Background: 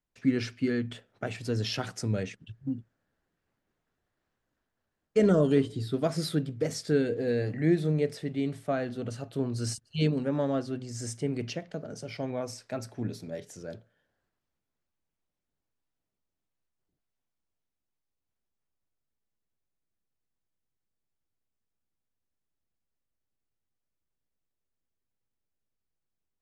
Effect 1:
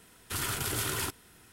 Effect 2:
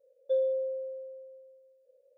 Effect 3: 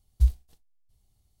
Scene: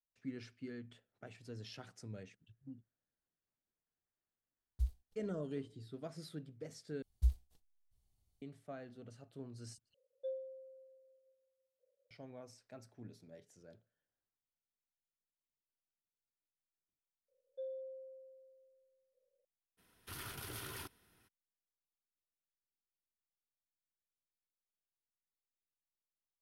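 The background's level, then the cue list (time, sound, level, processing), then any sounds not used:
background −18.5 dB
0:04.59: mix in 3 −15.5 dB + noise gate −57 dBFS, range −21 dB
0:07.02: overwrite with 3 −11 dB
0:09.94: overwrite with 2 −14 dB + reverb reduction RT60 0.69 s
0:17.28: mix in 2 −17 dB
0:19.77: mix in 1 −13.5 dB, fades 0.02 s + parametric band 7,500 Hz −11.5 dB 0.34 octaves

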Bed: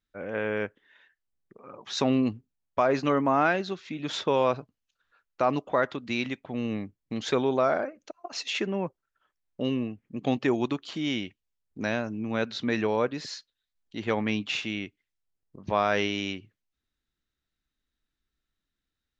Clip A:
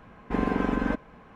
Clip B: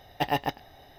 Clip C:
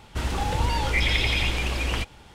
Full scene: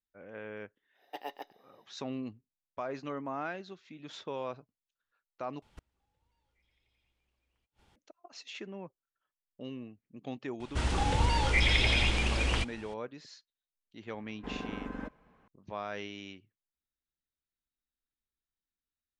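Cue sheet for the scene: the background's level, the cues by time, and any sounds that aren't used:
bed −14 dB
0:00.93: mix in B −8.5 dB, fades 0.10 s + four-pole ladder high-pass 310 Hz, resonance 35%
0:05.62: overwrite with C −17.5 dB + gate with flip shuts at −20 dBFS, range −37 dB
0:10.60: mix in C −3 dB + downsampling to 22,050 Hz
0:14.13: mix in A −13.5 dB

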